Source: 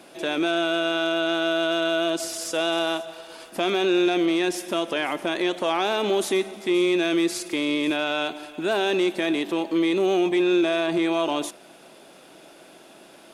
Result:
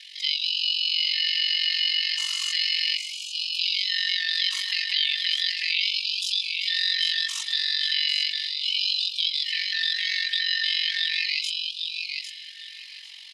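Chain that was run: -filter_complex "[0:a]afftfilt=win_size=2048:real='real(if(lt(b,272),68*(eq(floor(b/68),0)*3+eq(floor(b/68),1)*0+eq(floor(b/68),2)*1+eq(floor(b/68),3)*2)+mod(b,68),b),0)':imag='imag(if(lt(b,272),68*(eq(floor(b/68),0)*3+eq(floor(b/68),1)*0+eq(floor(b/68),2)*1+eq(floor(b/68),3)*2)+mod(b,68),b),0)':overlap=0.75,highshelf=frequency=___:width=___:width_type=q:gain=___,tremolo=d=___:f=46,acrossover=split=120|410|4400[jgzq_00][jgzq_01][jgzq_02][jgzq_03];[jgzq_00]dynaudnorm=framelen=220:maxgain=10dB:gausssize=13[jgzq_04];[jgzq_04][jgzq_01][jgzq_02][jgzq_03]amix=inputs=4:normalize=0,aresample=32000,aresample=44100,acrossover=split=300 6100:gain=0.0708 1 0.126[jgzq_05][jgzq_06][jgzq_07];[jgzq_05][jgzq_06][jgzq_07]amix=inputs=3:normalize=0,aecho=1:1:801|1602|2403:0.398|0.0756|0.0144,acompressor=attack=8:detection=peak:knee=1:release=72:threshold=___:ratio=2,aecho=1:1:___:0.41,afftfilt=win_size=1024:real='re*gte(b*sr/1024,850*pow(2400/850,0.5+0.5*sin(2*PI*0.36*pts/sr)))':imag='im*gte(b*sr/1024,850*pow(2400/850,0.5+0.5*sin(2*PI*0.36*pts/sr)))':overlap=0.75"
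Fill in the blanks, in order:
2.4k, 3, 9.5, 0.824, -27dB, 4.5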